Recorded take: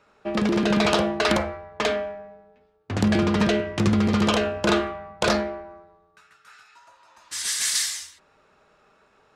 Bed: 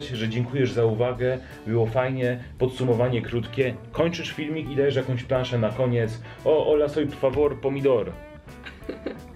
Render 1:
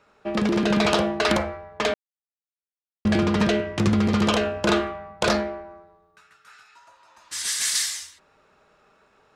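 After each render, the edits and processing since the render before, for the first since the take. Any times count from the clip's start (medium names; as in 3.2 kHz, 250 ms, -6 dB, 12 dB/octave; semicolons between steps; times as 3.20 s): 1.94–3.05 s: mute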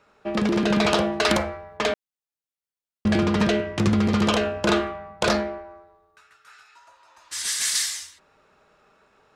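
1.12–1.77 s: treble shelf 4.4 kHz +5 dB; 5.58–7.37 s: peaking EQ 180 Hz -9 dB 0.92 oct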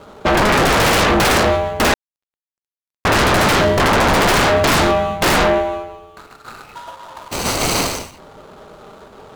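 median filter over 25 samples; sine folder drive 19 dB, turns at -10.5 dBFS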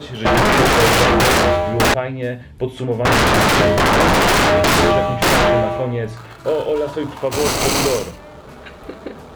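add bed +1 dB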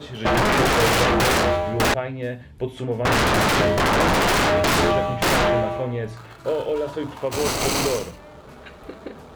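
trim -5 dB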